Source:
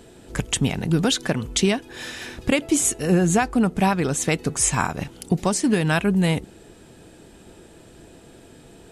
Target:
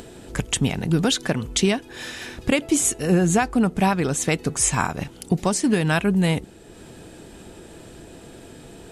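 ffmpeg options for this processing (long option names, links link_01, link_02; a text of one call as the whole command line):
ffmpeg -i in.wav -af "acompressor=mode=upward:threshold=-35dB:ratio=2.5" out.wav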